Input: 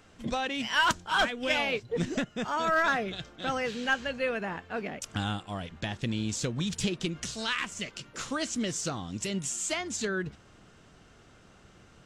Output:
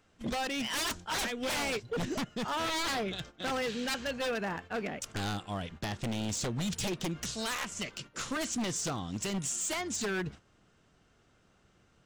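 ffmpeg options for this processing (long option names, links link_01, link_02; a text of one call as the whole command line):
ffmpeg -i in.wav -af "aeval=exprs='0.0422*(abs(mod(val(0)/0.0422+3,4)-2)-1)':channel_layout=same,agate=range=-10dB:threshold=-46dB:ratio=16:detection=peak" out.wav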